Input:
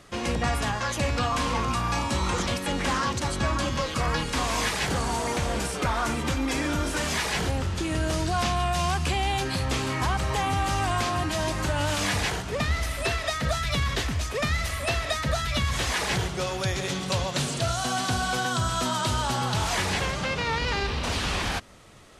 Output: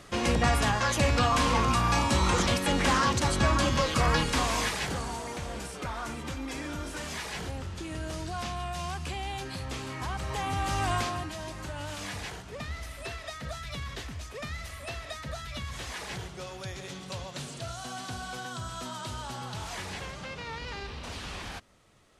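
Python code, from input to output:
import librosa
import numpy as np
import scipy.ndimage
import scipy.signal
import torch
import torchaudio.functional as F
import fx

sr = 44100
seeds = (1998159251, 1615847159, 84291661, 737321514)

y = fx.gain(x, sr, db=fx.line((4.22, 1.5), (5.27, -9.5), (9.98, -9.5), (10.94, -2.0), (11.37, -11.5)))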